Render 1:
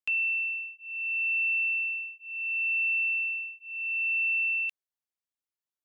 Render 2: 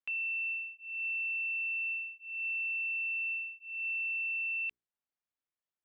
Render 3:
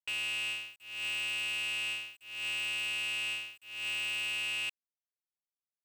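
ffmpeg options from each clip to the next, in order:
-af "lowpass=2700,alimiter=level_in=2.37:limit=0.0631:level=0:latency=1,volume=0.422,bandreject=f=60:t=h:w=6,bandreject=f=120:t=h:w=6,bandreject=f=180:t=h:w=6,bandreject=f=240:t=h:w=6,bandreject=f=300:t=h:w=6,bandreject=f=360:t=h:w=6,bandreject=f=420:t=h:w=6"
-af "aeval=exprs='val(0)*gte(abs(val(0)),0.002)':c=same,aeval=exprs='0.0282*(cos(1*acos(clip(val(0)/0.0282,-1,1)))-cos(1*PI/2))+0.00398*(cos(3*acos(clip(val(0)/0.0282,-1,1)))-cos(3*PI/2))':c=same,aeval=exprs='val(0)*sgn(sin(2*PI*110*n/s))':c=same"

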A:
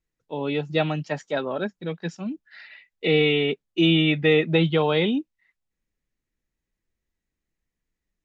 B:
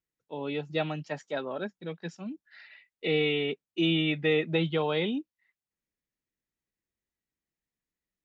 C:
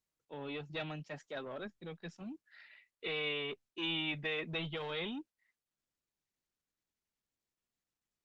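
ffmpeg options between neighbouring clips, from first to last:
-af "highpass=f=120:p=1,volume=0.473"
-filter_complex "[0:a]acrossover=split=1500[s0][s1];[s0]asoftclip=type=tanh:threshold=0.0211[s2];[s2][s1]amix=inputs=2:normalize=0,volume=0.562" -ar 48000 -c:a libopus -b:a 24k

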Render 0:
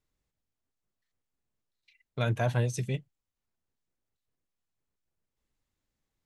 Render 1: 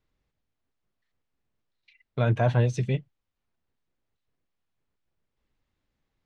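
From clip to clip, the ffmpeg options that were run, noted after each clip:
-filter_complex "[0:a]lowpass=3900,acrossover=split=1300[s0][s1];[s1]alimiter=level_in=4.73:limit=0.0631:level=0:latency=1:release=24,volume=0.211[s2];[s0][s2]amix=inputs=2:normalize=0,volume=1.88"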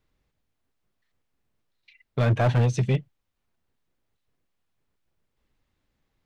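-af "asoftclip=type=hard:threshold=0.0944,volume=1.58"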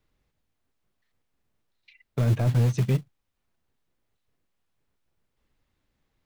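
-filter_complex "[0:a]acrossover=split=410[s0][s1];[s0]acrusher=bits=5:mode=log:mix=0:aa=0.000001[s2];[s1]acompressor=threshold=0.0141:ratio=6[s3];[s2][s3]amix=inputs=2:normalize=0"

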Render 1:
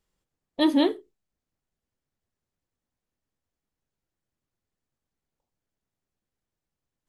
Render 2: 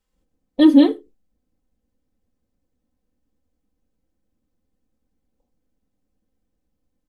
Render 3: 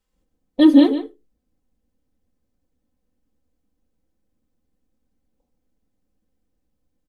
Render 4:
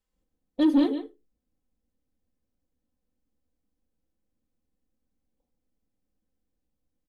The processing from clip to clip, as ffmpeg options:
-filter_complex "[0:a]aecho=1:1:3.9:0.71,acrossover=split=560[s0][s1];[s0]dynaudnorm=f=110:g=3:m=4.73[s2];[s2][s1]amix=inputs=2:normalize=0,volume=0.891"
-filter_complex "[0:a]asplit=2[s0][s1];[s1]adelay=145.8,volume=0.282,highshelf=f=4000:g=-3.28[s2];[s0][s2]amix=inputs=2:normalize=0"
-af "asoftclip=type=tanh:threshold=0.501,volume=0.422"

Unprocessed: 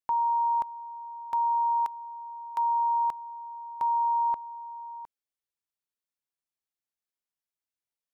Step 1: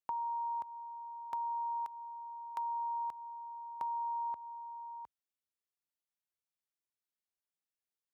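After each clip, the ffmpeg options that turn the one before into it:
-af "highpass=f=52:w=0.5412,highpass=f=52:w=1.3066,acompressor=threshold=0.0316:ratio=6,volume=0.531"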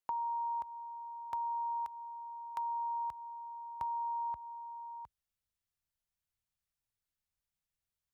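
-af "asubboost=boost=11:cutoff=100,volume=1.12"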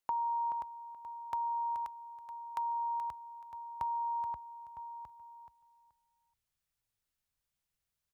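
-af "aecho=1:1:428|856|1284:0.376|0.0789|0.0166,volume=1.33"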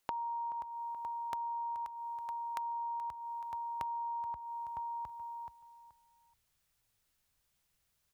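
-af "acompressor=threshold=0.00447:ratio=6,volume=2.82"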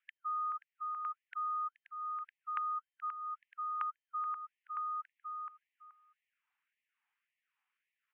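-af "highpass=f=190:t=q:w=0.5412,highpass=f=190:t=q:w=1.307,lowpass=f=2400:t=q:w=0.5176,lowpass=f=2400:t=q:w=0.7071,lowpass=f=2400:t=q:w=1.932,afreqshift=300,afftfilt=real='re*gte(b*sr/1024,700*pow(1800/700,0.5+0.5*sin(2*PI*1.8*pts/sr)))':imag='im*gte(b*sr/1024,700*pow(1800/700,0.5+0.5*sin(2*PI*1.8*pts/sr)))':win_size=1024:overlap=0.75,volume=1.26"

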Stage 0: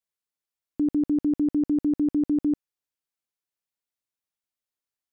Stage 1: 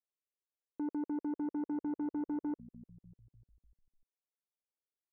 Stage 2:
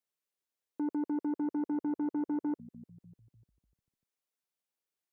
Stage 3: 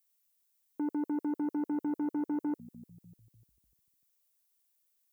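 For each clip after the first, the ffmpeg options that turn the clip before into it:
-filter_complex "[0:a]bandpass=f=460:t=q:w=1.7:csg=0,asplit=6[s0][s1][s2][s3][s4][s5];[s1]adelay=298,afreqshift=-61,volume=0.0708[s6];[s2]adelay=596,afreqshift=-122,volume=0.0437[s7];[s3]adelay=894,afreqshift=-183,volume=0.0272[s8];[s4]adelay=1192,afreqshift=-244,volume=0.0168[s9];[s5]adelay=1490,afreqshift=-305,volume=0.0105[s10];[s0][s6][s7][s8][s9][s10]amix=inputs=6:normalize=0,asoftclip=type=tanh:threshold=0.0355,volume=0.668"
-af "highpass=110,volume=1.5"
-af "aemphasis=mode=production:type=75kf"

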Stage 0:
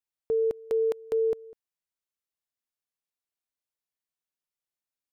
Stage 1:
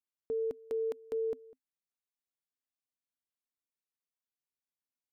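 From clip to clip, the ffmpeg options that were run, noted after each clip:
-af "equalizer=f=260:w=6:g=11.5,volume=0.376"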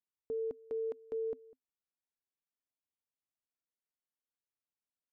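-af "lowpass=f=1200:p=1,volume=0.75"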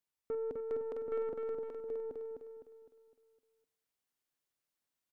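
-filter_complex "[0:a]asplit=2[s0][s1];[s1]aecho=0:1:48|781:0.299|0.562[s2];[s0][s2]amix=inputs=2:normalize=0,aeval=exprs='(tanh(56.2*val(0)+0.2)-tanh(0.2))/56.2':c=same,asplit=2[s3][s4];[s4]aecho=0:1:255|510|765|1020|1275|1530:0.631|0.278|0.122|0.0537|0.0236|0.0104[s5];[s3][s5]amix=inputs=2:normalize=0,volume=1.5"

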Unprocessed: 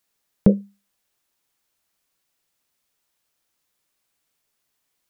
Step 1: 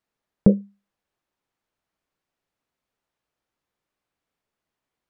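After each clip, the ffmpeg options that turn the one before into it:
-af "lowpass=f=1200:p=1"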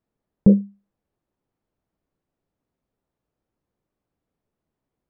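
-af "tiltshelf=f=830:g=9.5,alimiter=limit=0.631:level=0:latency=1:release=30"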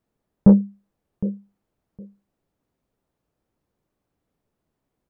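-af "aecho=1:1:762|1524:0.158|0.0254,acontrast=48,volume=0.794"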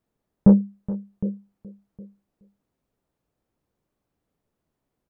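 -af "aecho=1:1:422:0.158,volume=0.841"

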